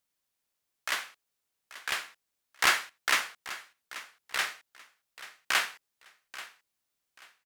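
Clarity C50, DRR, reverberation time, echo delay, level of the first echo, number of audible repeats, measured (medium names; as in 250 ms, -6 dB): no reverb, no reverb, no reverb, 835 ms, -16.0 dB, 2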